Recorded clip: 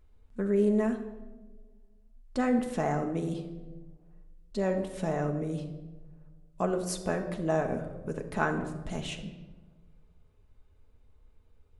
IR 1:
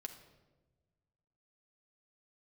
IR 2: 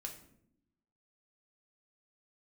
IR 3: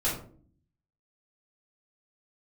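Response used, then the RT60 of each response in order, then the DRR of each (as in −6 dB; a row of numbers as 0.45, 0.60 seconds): 1; 1.3, 0.75, 0.50 seconds; 4.0, 1.0, −9.0 decibels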